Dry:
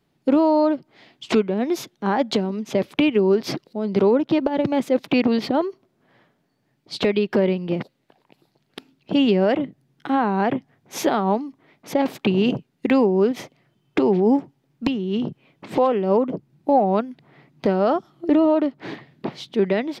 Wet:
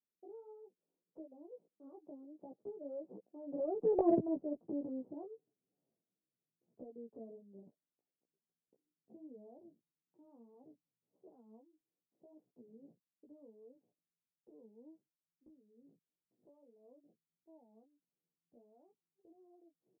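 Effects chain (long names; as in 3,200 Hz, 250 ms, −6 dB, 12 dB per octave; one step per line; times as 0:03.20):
source passing by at 0:04.05, 36 m/s, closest 2.1 metres
pitch shifter +4 semitones
inverse Chebyshev low-pass filter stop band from 2,100 Hz, stop band 60 dB
in parallel at −1 dB: downward compressor, threshold −49 dBFS, peak gain reduction 24 dB
on the sum: chorus effect 1.6 Hz, delay 15.5 ms, depth 2.5 ms
harmonic generator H 6 −43 dB, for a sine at −17.5 dBFS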